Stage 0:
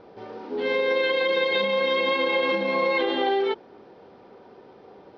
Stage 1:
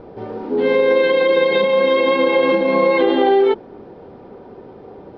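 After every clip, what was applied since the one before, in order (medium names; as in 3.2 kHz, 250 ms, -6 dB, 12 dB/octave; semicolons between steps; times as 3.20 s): tilt EQ -3 dB/octave; hum notches 50/100/150/200 Hz; trim +6.5 dB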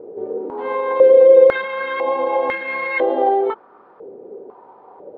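step-sequenced band-pass 2 Hz 430–1800 Hz; trim +7 dB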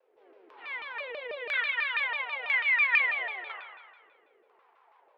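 resonant high-pass 2.4 kHz, resonance Q 1.8; spring tank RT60 1.5 s, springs 37 ms, chirp 75 ms, DRR -1 dB; vibrato with a chosen wave saw down 6.1 Hz, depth 250 cents; trim -6 dB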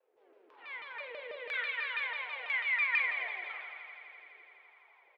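doubling 48 ms -11 dB; multi-head delay 84 ms, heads all three, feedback 75%, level -19 dB; trim -6.5 dB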